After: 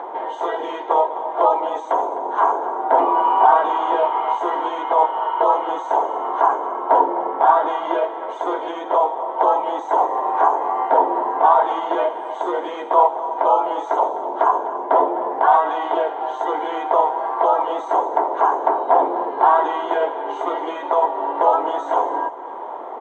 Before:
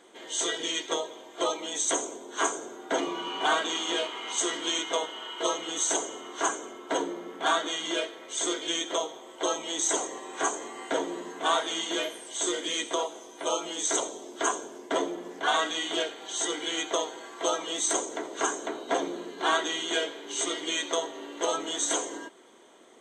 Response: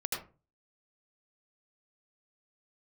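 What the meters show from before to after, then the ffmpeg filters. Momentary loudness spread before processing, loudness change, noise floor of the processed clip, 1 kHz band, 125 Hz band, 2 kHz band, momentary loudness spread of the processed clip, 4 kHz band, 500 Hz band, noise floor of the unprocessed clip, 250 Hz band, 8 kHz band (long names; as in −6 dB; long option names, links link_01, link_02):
8 LU, +10.5 dB, −31 dBFS, +17.5 dB, can't be measured, +1.0 dB, 9 LU, below −10 dB, +11.5 dB, −47 dBFS, +4.0 dB, below −25 dB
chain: -filter_complex "[0:a]highpass=500,asplit=2[link_01][link_02];[link_02]acompressor=mode=upward:threshold=-30dB:ratio=2.5,volume=-1dB[link_03];[link_01][link_03]amix=inputs=2:normalize=0,alimiter=limit=-17dB:level=0:latency=1:release=46,lowpass=frequency=890:width_type=q:width=4.9,aecho=1:1:255:0.2,volume=6.5dB"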